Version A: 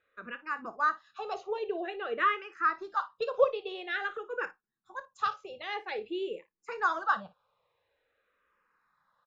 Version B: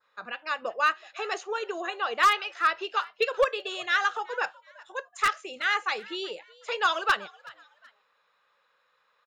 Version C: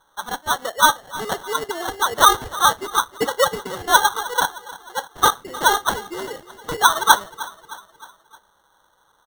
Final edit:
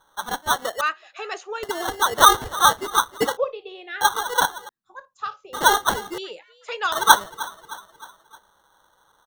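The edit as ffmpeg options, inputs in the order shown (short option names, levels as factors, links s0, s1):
-filter_complex "[1:a]asplit=2[s0][s1];[0:a]asplit=2[s2][s3];[2:a]asplit=5[s4][s5][s6][s7][s8];[s4]atrim=end=0.812[s9];[s0]atrim=start=0.808:end=1.632[s10];[s5]atrim=start=1.628:end=3.372[s11];[s2]atrim=start=3.368:end=4.012[s12];[s6]atrim=start=4.008:end=4.692[s13];[s3]atrim=start=4.688:end=5.532[s14];[s7]atrim=start=5.528:end=6.182[s15];[s1]atrim=start=6.178:end=6.922[s16];[s8]atrim=start=6.918[s17];[s9][s10]acrossfade=d=0.004:c1=hsin:c2=hsin[s18];[s18][s11]acrossfade=d=0.004:c1=hsin:c2=hsin[s19];[s19][s12]acrossfade=d=0.004:c1=hsin:c2=hsin[s20];[s20][s13]acrossfade=d=0.004:c1=hsin:c2=hsin[s21];[s21][s14]acrossfade=d=0.004:c1=hsin:c2=hsin[s22];[s22][s15]acrossfade=d=0.004:c1=hsin:c2=hsin[s23];[s23][s16]acrossfade=d=0.004:c1=hsin:c2=hsin[s24];[s24][s17]acrossfade=d=0.004:c1=hsin:c2=hsin"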